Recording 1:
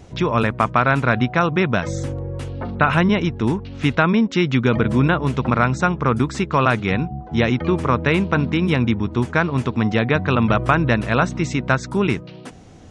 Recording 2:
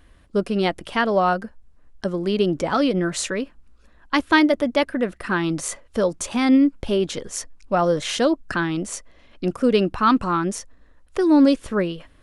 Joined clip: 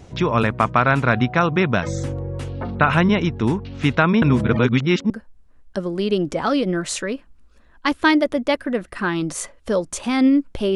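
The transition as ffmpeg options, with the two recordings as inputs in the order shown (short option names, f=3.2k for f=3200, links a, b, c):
-filter_complex "[0:a]apad=whole_dur=10.75,atrim=end=10.75,asplit=2[a][b];[a]atrim=end=4.222[c];[b]atrim=start=4.218:end=5.102,asetpts=PTS-STARTPTS,areverse[d];[1:a]atrim=start=1.378:end=7.03[e];[c][d]acrossfade=d=0.004:c1=hsin:c2=hsin[f];[f][e]acrossfade=d=0.004:c1=hsin:c2=hsin"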